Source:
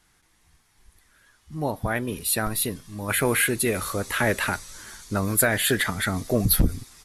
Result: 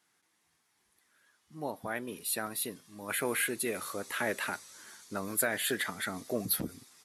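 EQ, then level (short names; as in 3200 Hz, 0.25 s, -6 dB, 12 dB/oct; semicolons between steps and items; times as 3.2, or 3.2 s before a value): HPF 220 Hz 12 dB/oct; -9.0 dB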